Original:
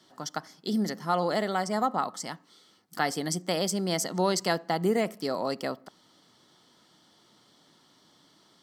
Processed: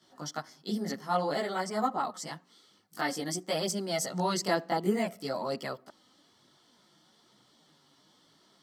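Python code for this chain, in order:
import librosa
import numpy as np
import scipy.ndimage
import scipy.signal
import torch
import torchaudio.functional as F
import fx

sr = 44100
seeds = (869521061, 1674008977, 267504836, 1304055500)

y = fx.chorus_voices(x, sr, voices=2, hz=0.54, base_ms=17, depth_ms=4.2, mix_pct=60)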